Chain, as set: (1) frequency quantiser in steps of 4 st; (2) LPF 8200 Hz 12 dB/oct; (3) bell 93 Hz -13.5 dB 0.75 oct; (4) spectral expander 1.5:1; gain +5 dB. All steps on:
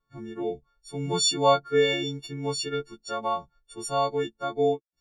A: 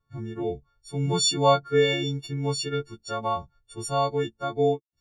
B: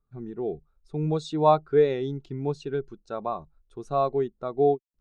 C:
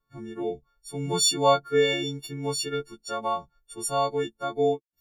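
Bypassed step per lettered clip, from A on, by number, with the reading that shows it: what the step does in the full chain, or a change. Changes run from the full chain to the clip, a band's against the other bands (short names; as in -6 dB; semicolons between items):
3, 125 Hz band +6.5 dB; 1, 4 kHz band -17.5 dB; 2, 8 kHz band +3.0 dB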